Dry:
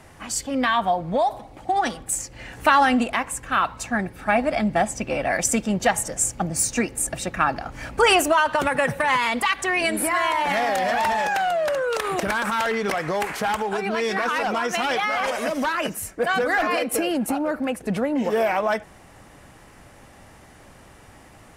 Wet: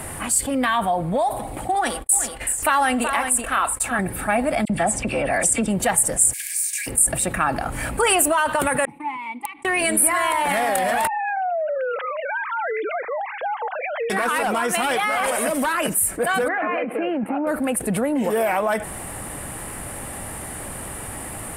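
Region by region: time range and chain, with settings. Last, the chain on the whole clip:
0:01.75–0:03.99: noise gate −39 dBFS, range −51 dB + parametric band 150 Hz −13 dB 1.1 octaves + single-tap delay 377 ms −12 dB
0:04.65–0:05.68: low-pass filter 8,400 Hz + all-pass dispersion lows, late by 47 ms, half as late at 2,300 Hz
0:06.32–0:06.86: compressing power law on the bin magnitudes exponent 0.49 + downward compressor 5 to 1, threshold −28 dBFS + Chebyshev high-pass with heavy ripple 1,600 Hz, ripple 9 dB
0:08.85–0:09.65: formant filter u + wrap-around overflow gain 22 dB + expander for the loud parts 2.5 to 1, over −42 dBFS
0:11.07–0:14.10: three sine waves on the formant tracks + downward compressor, threshold −26 dBFS
0:16.48–0:17.47: elliptic band-pass filter 180–2,400 Hz + output level in coarse steps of 9 dB
whole clip: high shelf with overshoot 7,400 Hz +8.5 dB, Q 3; envelope flattener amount 50%; level −5 dB

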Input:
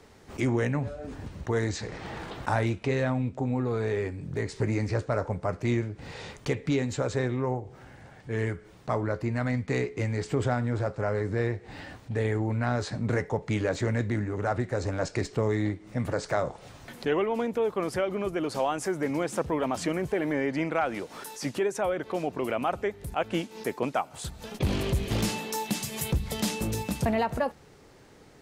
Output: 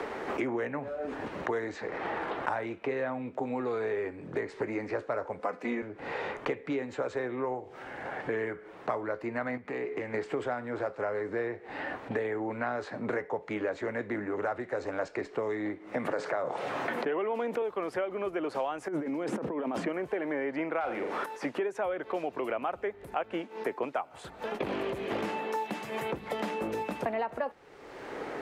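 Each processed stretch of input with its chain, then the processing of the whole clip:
0:05.39–0:05.82: high-pass filter 150 Hz 24 dB per octave + comb filter 4 ms, depth 70%
0:09.57–0:10.14: downward compressor 4 to 1, threshold −35 dBFS + highs frequency-modulated by the lows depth 0.17 ms
0:15.94–0:17.62: high-pass filter 120 Hz 24 dB per octave + envelope flattener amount 70%
0:18.88–0:19.87: compressor whose output falls as the input rises −37 dBFS + parametric band 210 Hz +11.5 dB 2.2 octaves
0:20.80–0:21.26: hard clipping −21 dBFS + flutter between parallel walls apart 7 metres, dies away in 0.38 s + envelope flattener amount 50%
whole clip: three-way crossover with the lows and the highs turned down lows −20 dB, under 290 Hz, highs −17 dB, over 2,700 Hz; multiband upward and downward compressor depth 100%; level −2 dB

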